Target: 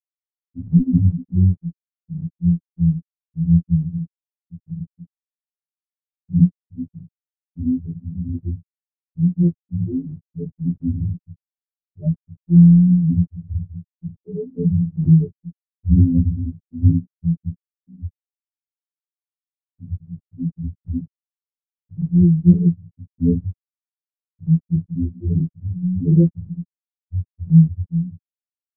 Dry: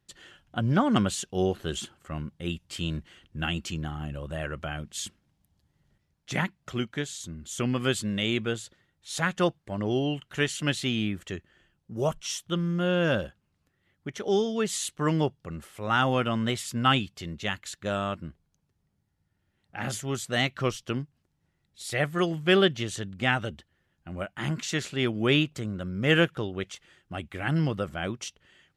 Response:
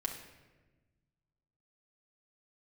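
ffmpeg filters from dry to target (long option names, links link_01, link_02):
-filter_complex "[0:a]asettb=1/sr,asplit=3[link_01][link_02][link_03];[link_01]atrim=end=13.084[link_04];[link_02]atrim=start=13.08:end=15.13,asetpts=PTS-STARTPTS,afade=type=in:duration=0.004:curve=qsin,afade=type=out:start_time=2.046:duration=0.004:curve=qsin,aeval=exprs='val(0)+0.5*0.0355*sgn(val(0))':channel_layout=same[link_05];[link_03]atrim=start=15.126[link_06];[link_04][link_05]acrossfade=duration=0.004:curve1=hsin:curve2=qsin[link_07];[link_07][link_06]acrossfade=duration=0.004:curve1=qsin:curve2=hsin,tremolo=f=0.81:d=0.34,asplit=2[link_08][link_09];[link_09]adelay=397,lowpass=frequency=1200:poles=1,volume=-13.5dB,asplit=2[link_10][link_11];[link_11]adelay=397,lowpass=frequency=1200:poles=1,volume=0.28,asplit=2[link_12][link_13];[link_13]adelay=397,lowpass=frequency=1200:poles=1,volume=0.28[link_14];[link_08][link_10][link_12][link_14]amix=inputs=4:normalize=0,acrusher=samples=37:mix=1:aa=0.000001,lowpass=frequency=10000:width=0.5412,lowpass=frequency=10000:width=1.3066,equalizer=frequency=130:width_type=o:width=2.6:gain=14,afftfilt=real='re*gte(hypot(re,im),0.708)':imag='im*gte(hypot(re,im),0.708)':win_size=1024:overlap=0.75,bass=frequency=250:gain=13,treble=frequency=4000:gain=-10,afftfilt=real='re*2*eq(mod(b,4),0)':imag='im*2*eq(mod(b,4),0)':win_size=2048:overlap=0.75,volume=-4dB"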